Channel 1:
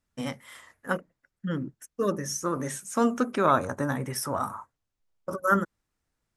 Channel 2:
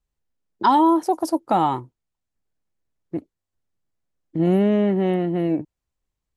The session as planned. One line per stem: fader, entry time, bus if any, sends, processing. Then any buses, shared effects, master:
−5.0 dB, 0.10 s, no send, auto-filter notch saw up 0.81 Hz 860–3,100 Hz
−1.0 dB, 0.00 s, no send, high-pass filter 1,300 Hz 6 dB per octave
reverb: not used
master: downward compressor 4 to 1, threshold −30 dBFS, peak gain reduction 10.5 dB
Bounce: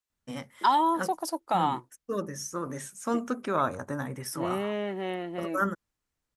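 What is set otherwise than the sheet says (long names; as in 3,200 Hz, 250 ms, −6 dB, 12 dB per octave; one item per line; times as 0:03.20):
stem 1: missing auto-filter notch saw up 0.81 Hz 860–3,100 Hz
master: missing downward compressor 4 to 1, threshold −30 dBFS, peak gain reduction 10.5 dB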